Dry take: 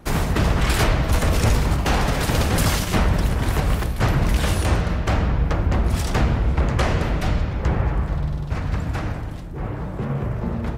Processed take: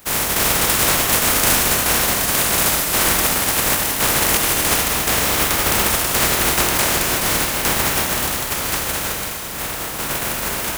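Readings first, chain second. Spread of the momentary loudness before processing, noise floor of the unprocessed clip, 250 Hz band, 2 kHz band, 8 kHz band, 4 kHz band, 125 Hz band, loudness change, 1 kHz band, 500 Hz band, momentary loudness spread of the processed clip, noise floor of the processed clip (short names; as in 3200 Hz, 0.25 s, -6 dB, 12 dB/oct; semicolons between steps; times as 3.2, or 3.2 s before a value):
7 LU, -29 dBFS, -2.0 dB, +8.0 dB, +17.0 dB, +11.0 dB, -9.5 dB, +6.0 dB, +5.0 dB, +2.5 dB, 7 LU, -26 dBFS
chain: spectral contrast lowered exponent 0.16; bell 4500 Hz -4.5 dB 1.6 oct; Schroeder reverb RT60 3.5 s, combs from 25 ms, DRR 3.5 dB; gain +1.5 dB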